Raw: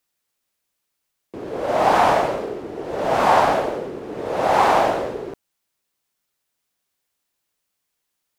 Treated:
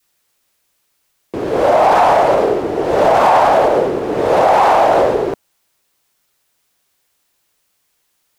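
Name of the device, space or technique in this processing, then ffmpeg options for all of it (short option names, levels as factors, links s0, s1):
mastering chain: -af "adynamicequalizer=threshold=0.0447:dfrequency=720:dqfactor=1:tfrequency=720:tqfactor=1:attack=5:release=100:ratio=0.375:range=3:mode=boostabove:tftype=bell,equalizer=f=220:t=o:w=0.77:g=-2.5,acompressor=threshold=0.2:ratio=2.5,asoftclip=type=tanh:threshold=0.398,alimiter=level_in=5.62:limit=0.891:release=50:level=0:latency=1,volume=0.708"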